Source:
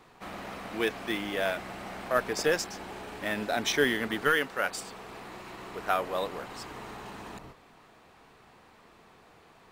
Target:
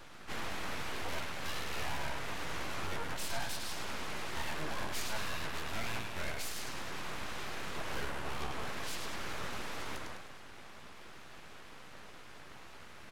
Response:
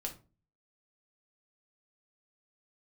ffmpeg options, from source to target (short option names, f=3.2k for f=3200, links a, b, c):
-filter_complex "[0:a]highpass=f=470:p=1,acompressor=threshold=-37dB:ratio=4,asplit=2[a][b];[b]aecho=0:1:76|152|228|304|380|456:0.447|0.232|0.121|0.0628|0.0327|0.017[c];[a][c]amix=inputs=2:normalize=0,asoftclip=type=tanh:threshold=-38dB,flanger=delay=9.8:depth=5.8:regen=49:speed=0.97:shape=sinusoidal,aeval=exprs='abs(val(0))':c=same,asetrate=32667,aresample=44100,volume=12.5dB"